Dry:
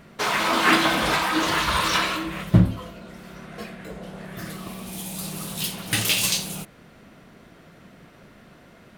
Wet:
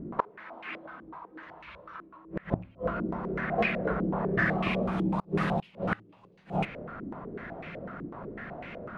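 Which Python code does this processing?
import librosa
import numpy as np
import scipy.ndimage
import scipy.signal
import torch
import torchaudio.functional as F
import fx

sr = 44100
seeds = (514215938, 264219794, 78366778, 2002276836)

y = fx.rattle_buzz(x, sr, strikes_db=-16.0, level_db=-24.0)
y = fx.gate_flip(y, sr, shuts_db=-20.0, range_db=-33)
y = fx.filter_held_lowpass(y, sr, hz=8.0, low_hz=320.0, high_hz=2400.0)
y = y * 10.0 ** (5.5 / 20.0)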